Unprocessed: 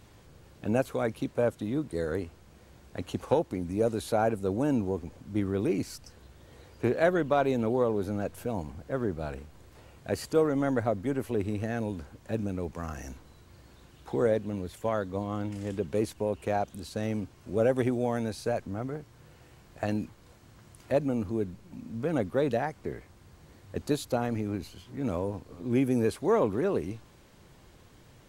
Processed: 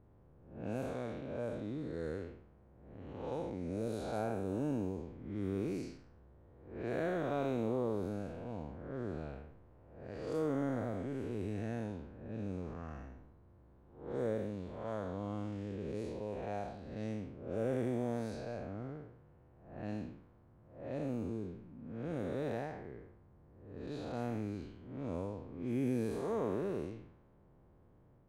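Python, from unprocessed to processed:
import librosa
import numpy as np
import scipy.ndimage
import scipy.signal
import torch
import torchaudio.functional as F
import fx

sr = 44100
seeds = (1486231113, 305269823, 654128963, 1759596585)

y = fx.spec_blur(x, sr, span_ms=239.0)
y = fx.env_lowpass(y, sr, base_hz=780.0, full_db=-27.0)
y = F.gain(torch.from_numpy(y), -6.0).numpy()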